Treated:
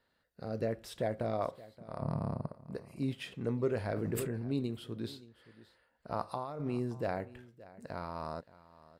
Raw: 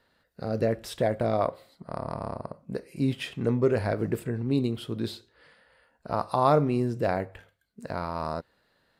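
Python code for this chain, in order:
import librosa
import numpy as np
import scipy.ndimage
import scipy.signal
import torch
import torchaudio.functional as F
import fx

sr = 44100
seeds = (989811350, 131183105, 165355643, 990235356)

y = fx.peak_eq(x, sr, hz=150.0, db=14.0, octaves=1.7, at=(2.0, 2.48))
y = fx.over_compress(y, sr, threshold_db=-27.0, ratio=-1.0, at=(6.1, 6.72), fade=0.02)
y = y + 10.0 ** (-19.0 / 20.0) * np.pad(y, (int(573 * sr / 1000.0), 0))[:len(y)]
y = fx.sustainer(y, sr, db_per_s=26.0, at=(3.89, 4.53))
y = F.gain(torch.from_numpy(y), -8.5).numpy()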